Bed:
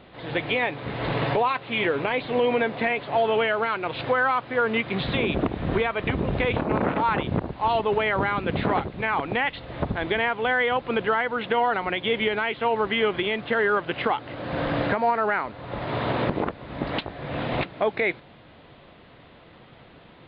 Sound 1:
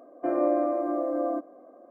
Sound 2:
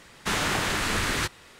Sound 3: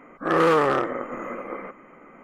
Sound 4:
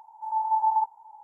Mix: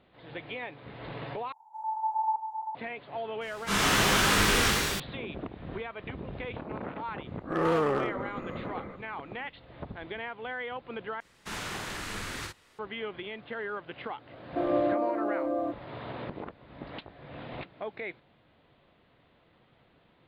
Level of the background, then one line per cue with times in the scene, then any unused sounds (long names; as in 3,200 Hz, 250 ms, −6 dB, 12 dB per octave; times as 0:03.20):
bed −14 dB
0:01.52: overwrite with 4 −6 dB + single-tap delay 392 ms −7 dB
0:03.41: mix in 2 −8 dB + reverb with rising layers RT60 1.5 s, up +12 semitones, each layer −8 dB, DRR −9.5 dB
0:07.25: mix in 3 −10.5 dB + low-shelf EQ 330 Hz +9.5 dB
0:11.20: overwrite with 2 −12.5 dB + double-tracking delay 49 ms −3 dB
0:14.32: mix in 1 −2.5 dB